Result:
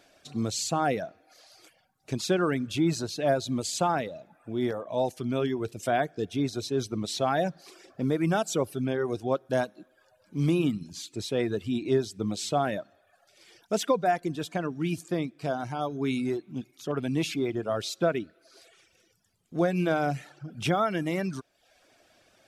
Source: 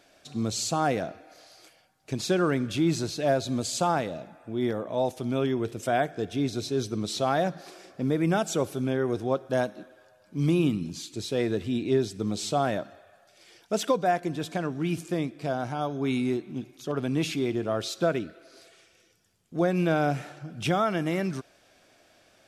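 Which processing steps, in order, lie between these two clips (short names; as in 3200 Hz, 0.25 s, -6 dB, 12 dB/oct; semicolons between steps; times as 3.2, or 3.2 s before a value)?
reverb removal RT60 0.7 s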